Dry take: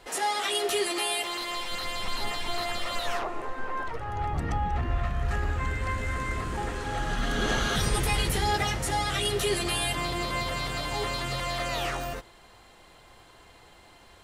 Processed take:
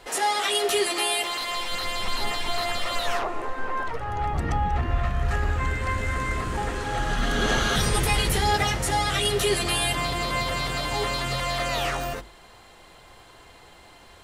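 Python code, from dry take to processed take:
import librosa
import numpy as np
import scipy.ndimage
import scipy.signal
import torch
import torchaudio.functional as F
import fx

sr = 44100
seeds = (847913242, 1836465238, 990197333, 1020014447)

y = fx.hum_notches(x, sr, base_hz=50, count=7)
y = y * 10.0 ** (4.0 / 20.0)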